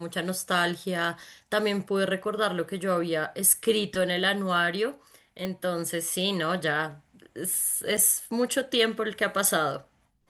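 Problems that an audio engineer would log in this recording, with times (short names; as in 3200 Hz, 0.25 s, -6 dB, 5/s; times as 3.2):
5.45 pop -17 dBFS
7.97–7.98 gap 6.4 ms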